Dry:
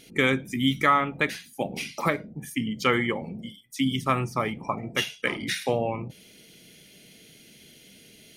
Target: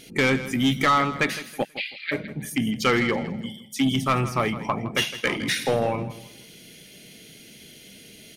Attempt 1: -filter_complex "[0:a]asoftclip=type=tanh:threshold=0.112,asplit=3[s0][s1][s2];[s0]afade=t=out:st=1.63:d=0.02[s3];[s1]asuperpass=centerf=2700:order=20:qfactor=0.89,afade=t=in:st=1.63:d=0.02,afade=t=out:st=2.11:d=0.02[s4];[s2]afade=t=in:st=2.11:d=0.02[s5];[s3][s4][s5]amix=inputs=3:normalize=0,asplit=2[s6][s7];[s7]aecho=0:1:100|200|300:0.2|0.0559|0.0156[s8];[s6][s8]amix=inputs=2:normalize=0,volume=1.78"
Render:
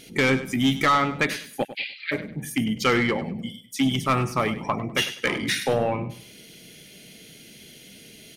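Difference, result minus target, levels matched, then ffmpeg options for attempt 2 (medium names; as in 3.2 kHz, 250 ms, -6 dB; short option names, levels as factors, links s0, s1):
echo 62 ms early
-filter_complex "[0:a]asoftclip=type=tanh:threshold=0.112,asplit=3[s0][s1][s2];[s0]afade=t=out:st=1.63:d=0.02[s3];[s1]asuperpass=centerf=2700:order=20:qfactor=0.89,afade=t=in:st=1.63:d=0.02,afade=t=out:st=2.11:d=0.02[s4];[s2]afade=t=in:st=2.11:d=0.02[s5];[s3][s4][s5]amix=inputs=3:normalize=0,asplit=2[s6][s7];[s7]aecho=0:1:162|324|486:0.2|0.0559|0.0156[s8];[s6][s8]amix=inputs=2:normalize=0,volume=1.78"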